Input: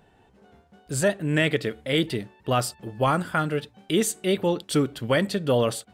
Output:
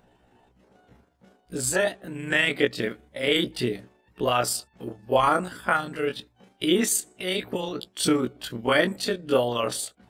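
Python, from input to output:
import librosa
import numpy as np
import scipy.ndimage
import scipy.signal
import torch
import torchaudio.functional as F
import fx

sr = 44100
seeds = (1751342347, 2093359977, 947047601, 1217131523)

y = fx.hpss(x, sr, part='harmonic', gain_db=-14)
y = fx.stretch_grains(y, sr, factor=1.7, grain_ms=80.0)
y = F.gain(torch.from_numpy(y), 4.5).numpy()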